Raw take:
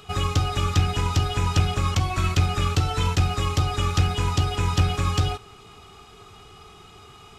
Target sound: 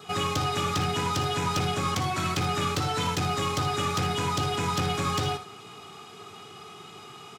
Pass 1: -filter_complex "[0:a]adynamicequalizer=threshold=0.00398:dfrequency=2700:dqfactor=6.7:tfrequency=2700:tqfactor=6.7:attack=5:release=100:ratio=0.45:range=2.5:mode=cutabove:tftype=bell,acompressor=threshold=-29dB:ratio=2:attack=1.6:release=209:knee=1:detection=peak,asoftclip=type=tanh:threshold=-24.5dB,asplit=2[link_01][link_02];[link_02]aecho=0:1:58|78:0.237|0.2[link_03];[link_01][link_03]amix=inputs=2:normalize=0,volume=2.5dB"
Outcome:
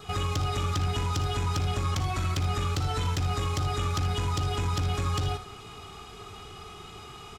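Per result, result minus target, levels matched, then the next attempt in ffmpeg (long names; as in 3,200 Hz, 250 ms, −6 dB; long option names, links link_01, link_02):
downward compressor: peak gain reduction +9.5 dB; 125 Hz band +5.0 dB
-filter_complex "[0:a]adynamicequalizer=threshold=0.00398:dfrequency=2700:dqfactor=6.7:tfrequency=2700:tqfactor=6.7:attack=5:release=100:ratio=0.45:range=2.5:mode=cutabove:tftype=bell,asoftclip=type=tanh:threshold=-24.5dB,asplit=2[link_01][link_02];[link_02]aecho=0:1:58|78:0.237|0.2[link_03];[link_01][link_03]amix=inputs=2:normalize=0,volume=2.5dB"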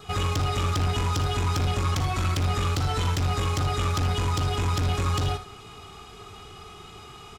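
125 Hz band +4.5 dB
-filter_complex "[0:a]adynamicequalizer=threshold=0.00398:dfrequency=2700:dqfactor=6.7:tfrequency=2700:tqfactor=6.7:attack=5:release=100:ratio=0.45:range=2.5:mode=cutabove:tftype=bell,highpass=frequency=130:width=0.5412,highpass=frequency=130:width=1.3066,asoftclip=type=tanh:threshold=-24.5dB,asplit=2[link_01][link_02];[link_02]aecho=0:1:58|78:0.237|0.2[link_03];[link_01][link_03]amix=inputs=2:normalize=0,volume=2.5dB"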